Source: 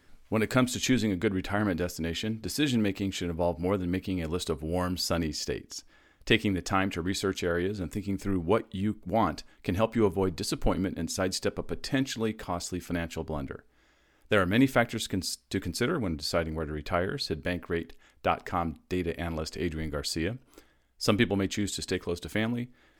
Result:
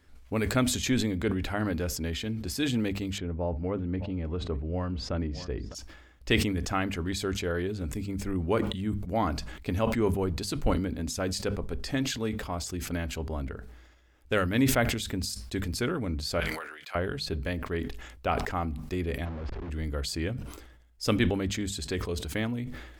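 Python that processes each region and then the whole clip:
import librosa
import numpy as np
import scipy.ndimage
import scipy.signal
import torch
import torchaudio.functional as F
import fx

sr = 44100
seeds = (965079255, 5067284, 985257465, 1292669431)

y = fx.chain(x, sr, fx.spacing_loss(db_at_10k=34),
    fx.echo_single(ms=605, db=-22.5), at=(3.18, 5.75))
y = fx.chain(y, sr, fx.highpass(hz=1300.0, slope=12),
    fx.doubler(ms=26.0, db=-13.5), at=(16.4, 16.95))
y = fx.chain(y, sr, fx.auto_swell(attack_ms=130.0),
    fx.schmitt(flips_db=-49.5),
    fx.spacing_loss(db_at_10k=40), at=(19.25, 19.7))
y = fx.peak_eq(y, sr, hz=60.0, db=13.0, octaves=0.99)
y = fx.hum_notches(y, sr, base_hz=50, count=4)
y = fx.sustainer(y, sr, db_per_s=53.0)
y = y * librosa.db_to_amplitude(-2.5)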